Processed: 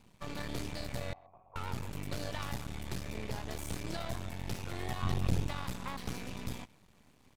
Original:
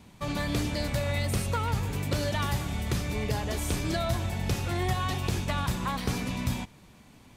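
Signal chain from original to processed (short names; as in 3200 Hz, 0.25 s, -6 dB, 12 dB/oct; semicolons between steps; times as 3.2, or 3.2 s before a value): 5.02–5.47 low shelf 330 Hz +11.5 dB; half-wave rectifier; 1.13–1.56 vocal tract filter a; speakerphone echo 0.13 s, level -27 dB; gain -6 dB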